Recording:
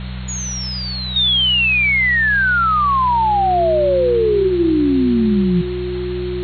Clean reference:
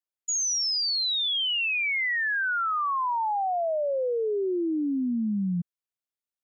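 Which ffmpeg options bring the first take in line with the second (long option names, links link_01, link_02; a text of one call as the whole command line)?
ffmpeg -i in.wav -af "bandreject=frequency=62.5:width_type=h:width=4,bandreject=frequency=125:width_type=h:width=4,bandreject=frequency=187.5:width_type=h:width=4,bandreject=frequency=360:width=30,afwtdn=0.025,asetnsamples=nb_out_samples=441:pad=0,asendcmd='1.16 volume volume -11.5dB',volume=0dB" out.wav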